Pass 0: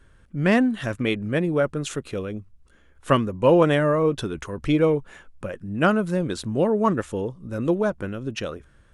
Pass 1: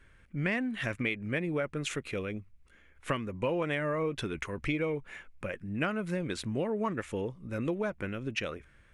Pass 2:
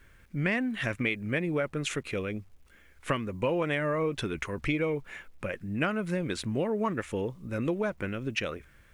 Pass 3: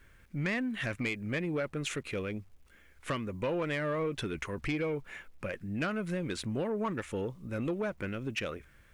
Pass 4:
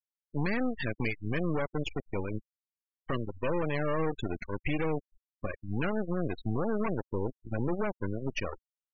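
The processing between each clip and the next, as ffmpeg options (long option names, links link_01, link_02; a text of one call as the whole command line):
ffmpeg -i in.wav -af "equalizer=frequency=2200:width=2.1:gain=12.5,acompressor=threshold=-22dB:ratio=6,volume=-6dB" out.wav
ffmpeg -i in.wav -af "acrusher=bits=11:mix=0:aa=0.000001,volume=2.5dB" out.wav
ffmpeg -i in.wav -af "asoftclip=type=tanh:threshold=-23dB,volume=-2dB" out.wav
ffmpeg -i in.wav -af "aeval=exprs='0.0562*(cos(1*acos(clip(val(0)/0.0562,-1,1)))-cos(1*PI/2))+0.02*(cos(4*acos(clip(val(0)/0.0562,-1,1)))-cos(4*PI/2))+0.00398*(cos(5*acos(clip(val(0)/0.0562,-1,1)))-cos(5*PI/2))+0.0126*(cos(7*acos(clip(val(0)/0.0562,-1,1)))-cos(7*PI/2))':channel_layout=same,afftfilt=real='re*gte(hypot(re,im),0.0355)':imag='im*gte(hypot(re,im),0.0355)':win_size=1024:overlap=0.75" out.wav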